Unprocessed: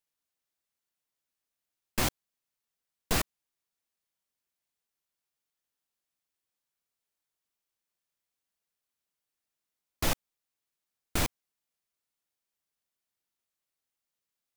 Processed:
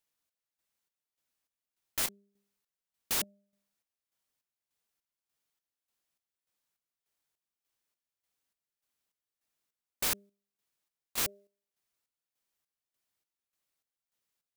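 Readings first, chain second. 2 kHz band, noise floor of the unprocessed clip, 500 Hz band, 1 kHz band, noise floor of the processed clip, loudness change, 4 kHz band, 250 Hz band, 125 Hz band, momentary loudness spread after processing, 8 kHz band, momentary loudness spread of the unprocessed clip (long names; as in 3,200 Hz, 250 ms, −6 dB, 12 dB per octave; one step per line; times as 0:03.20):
−4.0 dB, below −85 dBFS, −8.5 dB, −7.5 dB, below −85 dBFS, −0.5 dB, −1.5 dB, −12.0 dB, −16.0 dB, 6 LU, +1.0 dB, 7 LU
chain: hum removal 200.6 Hz, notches 3
wrap-around overflow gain 27 dB
square-wave tremolo 1.7 Hz, depth 65%, duty 50%
level +2.5 dB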